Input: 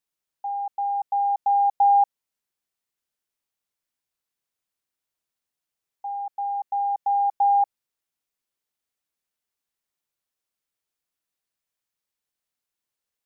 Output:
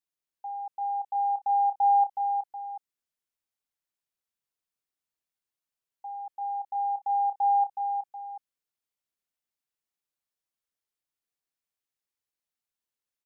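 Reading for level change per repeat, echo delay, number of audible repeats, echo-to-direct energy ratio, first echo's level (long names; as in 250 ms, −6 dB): −7.5 dB, 369 ms, 2, −5.5 dB, −6.0 dB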